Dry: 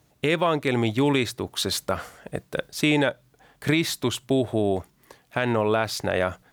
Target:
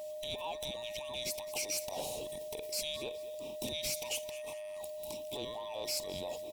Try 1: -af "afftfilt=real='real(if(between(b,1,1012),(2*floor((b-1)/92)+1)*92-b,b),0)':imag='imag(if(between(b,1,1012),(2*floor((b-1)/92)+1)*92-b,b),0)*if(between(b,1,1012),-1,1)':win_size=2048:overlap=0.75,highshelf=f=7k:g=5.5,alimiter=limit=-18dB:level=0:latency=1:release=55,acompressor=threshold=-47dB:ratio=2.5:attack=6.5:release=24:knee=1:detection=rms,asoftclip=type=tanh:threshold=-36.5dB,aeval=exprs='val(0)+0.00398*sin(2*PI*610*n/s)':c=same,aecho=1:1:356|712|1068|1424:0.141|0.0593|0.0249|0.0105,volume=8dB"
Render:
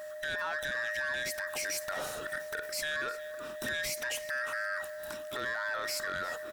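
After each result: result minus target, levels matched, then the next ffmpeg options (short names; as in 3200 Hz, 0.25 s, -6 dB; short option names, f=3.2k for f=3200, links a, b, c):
echo 0.145 s late; 2000 Hz band +12.5 dB
-af "afftfilt=real='real(if(between(b,1,1012),(2*floor((b-1)/92)+1)*92-b,b),0)':imag='imag(if(between(b,1,1012),(2*floor((b-1)/92)+1)*92-b,b),0)*if(between(b,1,1012),-1,1)':win_size=2048:overlap=0.75,highshelf=f=7k:g=5.5,alimiter=limit=-18dB:level=0:latency=1:release=55,acompressor=threshold=-47dB:ratio=2.5:attack=6.5:release=24:knee=1:detection=rms,asoftclip=type=tanh:threshold=-36.5dB,aeval=exprs='val(0)+0.00398*sin(2*PI*610*n/s)':c=same,aecho=1:1:211|422|633|844:0.141|0.0593|0.0249|0.0105,volume=8dB"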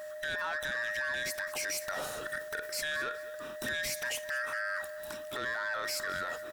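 2000 Hz band +12.5 dB
-af "afftfilt=real='real(if(between(b,1,1012),(2*floor((b-1)/92)+1)*92-b,b),0)':imag='imag(if(between(b,1,1012),(2*floor((b-1)/92)+1)*92-b,b),0)*if(between(b,1,1012),-1,1)':win_size=2048:overlap=0.75,highshelf=f=7k:g=5.5,alimiter=limit=-18dB:level=0:latency=1:release=55,acompressor=threshold=-47dB:ratio=2.5:attack=6.5:release=24:knee=1:detection=rms,asuperstop=centerf=1500:order=8:qfactor=1.1,asoftclip=type=tanh:threshold=-36.5dB,aeval=exprs='val(0)+0.00398*sin(2*PI*610*n/s)':c=same,aecho=1:1:211|422|633|844:0.141|0.0593|0.0249|0.0105,volume=8dB"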